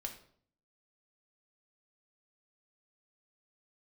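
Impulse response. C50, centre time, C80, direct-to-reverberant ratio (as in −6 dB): 9.5 dB, 15 ms, 13.5 dB, 2.0 dB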